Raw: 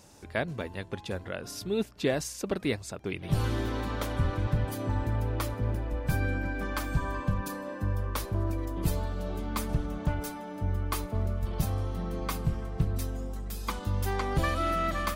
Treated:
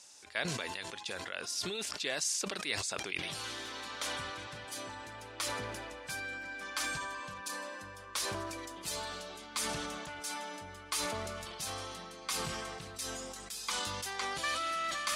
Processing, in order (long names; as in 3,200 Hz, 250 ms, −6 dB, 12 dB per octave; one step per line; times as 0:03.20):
meter weighting curve ITU-R 468
level that may fall only so fast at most 22 dB per second
level −7.5 dB